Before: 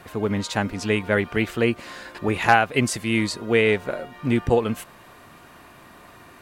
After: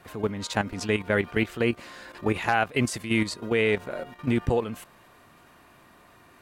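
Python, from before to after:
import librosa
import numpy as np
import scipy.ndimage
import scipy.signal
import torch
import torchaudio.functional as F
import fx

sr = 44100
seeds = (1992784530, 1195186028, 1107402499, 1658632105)

y = fx.level_steps(x, sr, step_db=11)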